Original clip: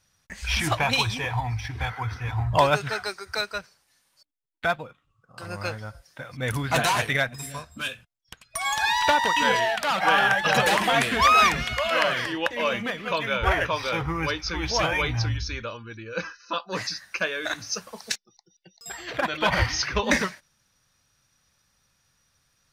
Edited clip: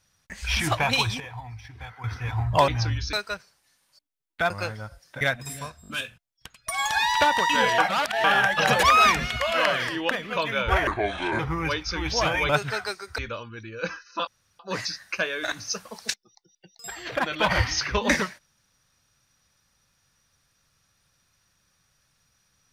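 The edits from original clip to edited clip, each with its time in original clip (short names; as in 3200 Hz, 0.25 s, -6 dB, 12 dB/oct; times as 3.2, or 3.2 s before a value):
1.2–2.04 gain -11 dB
2.68–3.37 swap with 15.07–15.52
4.74–5.53 cut
6.24–7.14 cut
7.75 stutter 0.02 s, 4 plays
9.65–10.11 reverse
10.7–11.2 cut
12.48–12.86 cut
13.62–13.97 speed 67%
16.61 insert room tone 0.32 s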